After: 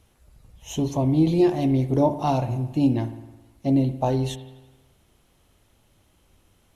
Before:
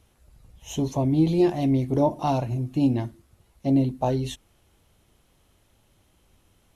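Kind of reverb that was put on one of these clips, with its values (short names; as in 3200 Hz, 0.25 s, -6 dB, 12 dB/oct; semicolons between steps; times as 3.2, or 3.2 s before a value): spring tank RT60 1.1 s, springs 53 ms, chirp 60 ms, DRR 12 dB; gain +1 dB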